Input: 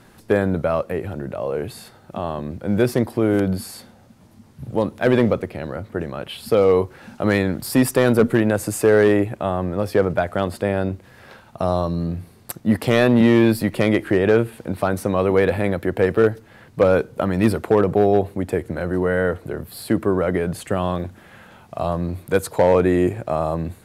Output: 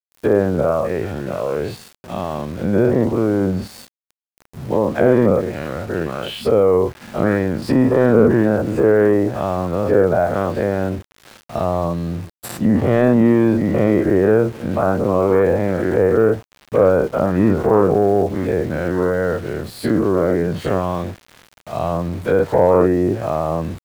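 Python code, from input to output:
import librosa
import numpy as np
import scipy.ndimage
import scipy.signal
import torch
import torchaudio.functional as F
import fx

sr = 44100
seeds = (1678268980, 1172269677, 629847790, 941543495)

y = fx.spec_dilate(x, sr, span_ms=120)
y = fx.env_lowpass_down(y, sr, base_hz=1200.0, full_db=-12.0)
y = np.where(np.abs(y) >= 10.0 ** (-33.5 / 20.0), y, 0.0)
y = F.gain(torch.from_numpy(y), -1.0).numpy()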